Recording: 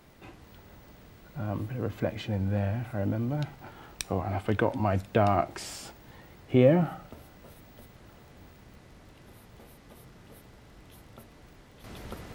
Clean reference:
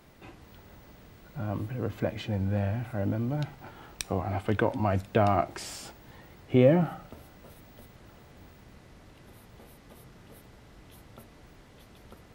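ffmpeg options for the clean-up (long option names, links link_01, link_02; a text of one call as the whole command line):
ffmpeg -i in.wav -af "adeclick=threshold=4,asetnsamples=nb_out_samples=441:pad=0,asendcmd='11.84 volume volume -9.5dB',volume=0dB" out.wav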